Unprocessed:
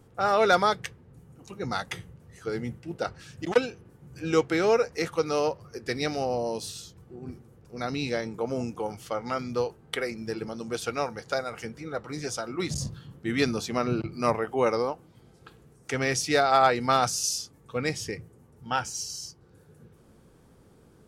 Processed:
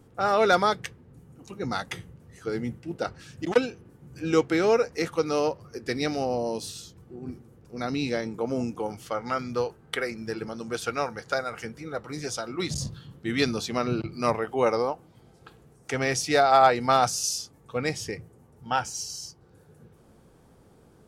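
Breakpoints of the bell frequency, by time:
bell +4 dB 0.75 oct
270 Hz
from 9.08 s 1500 Hz
from 11.71 s 12000 Hz
from 12.29 s 3800 Hz
from 14.63 s 740 Hz

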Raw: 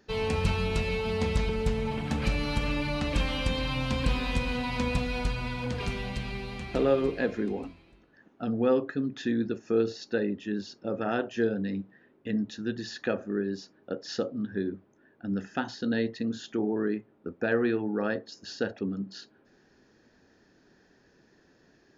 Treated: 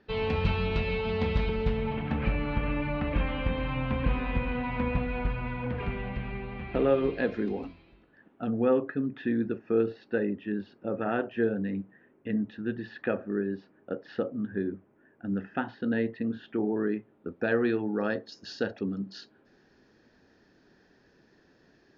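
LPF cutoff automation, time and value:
LPF 24 dB/oct
1.6 s 3800 Hz
2.38 s 2400 Hz
6.54 s 2400 Hz
7.55 s 5200 Hz
8.71 s 2700 Hz
16.64 s 2700 Hz
17.73 s 5700 Hz

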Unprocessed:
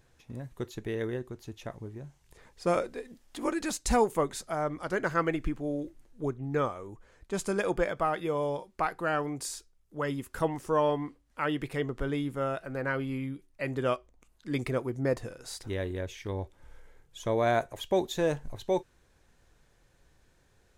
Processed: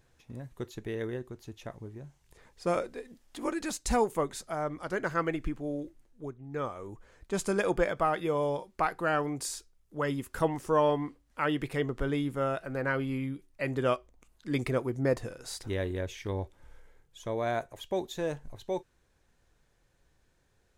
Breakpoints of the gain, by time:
5.79 s -2 dB
6.44 s -10 dB
6.85 s +1 dB
16.36 s +1 dB
17.18 s -5 dB

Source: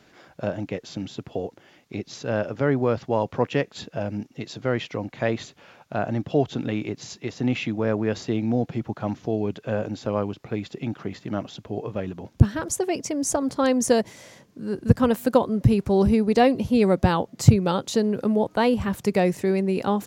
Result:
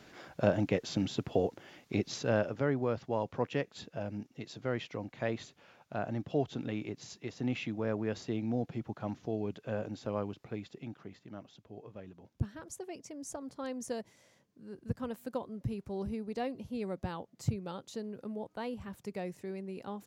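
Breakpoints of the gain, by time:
2.08 s 0 dB
2.74 s -10 dB
10.4 s -10 dB
11.3 s -18.5 dB

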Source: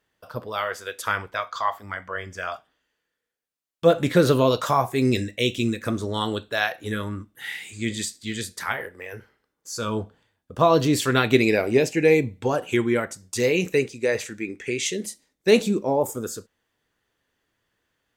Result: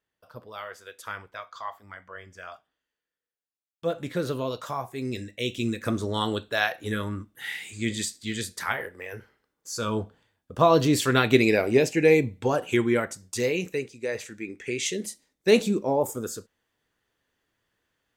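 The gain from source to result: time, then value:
5.08 s -11 dB
5.89 s -1 dB
13.21 s -1 dB
13.83 s -9 dB
14.9 s -2 dB

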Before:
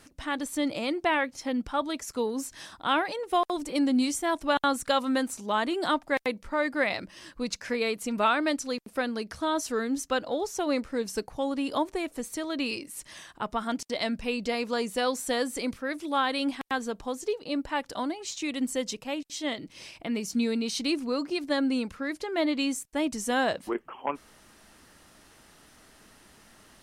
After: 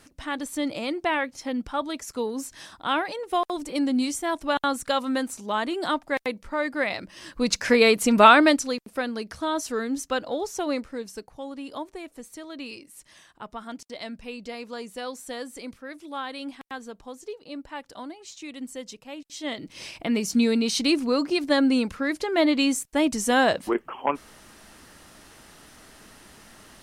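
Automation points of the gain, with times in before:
7.03 s +0.5 dB
7.63 s +11 dB
8.39 s +11 dB
8.83 s +1 dB
10.66 s +1 dB
11.21 s -7 dB
19.09 s -7 dB
19.84 s +6 dB

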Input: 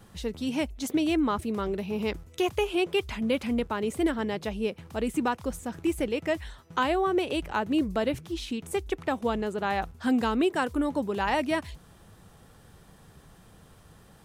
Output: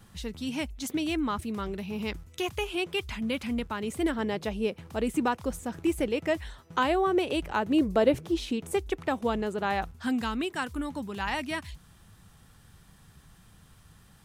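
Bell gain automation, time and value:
bell 490 Hz 1.7 oct
3.78 s -7 dB
4.27 s +0.5 dB
7.61 s +0.5 dB
8.27 s +9.5 dB
8.9 s -0.5 dB
9.74 s -0.5 dB
10.23 s -11 dB

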